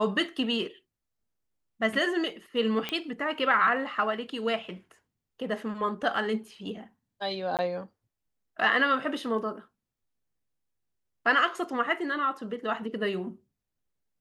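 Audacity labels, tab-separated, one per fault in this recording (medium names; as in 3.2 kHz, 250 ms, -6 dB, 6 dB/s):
2.890000	2.890000	pop -16 dBFS
7.570000	7.590000	dropout 18 ms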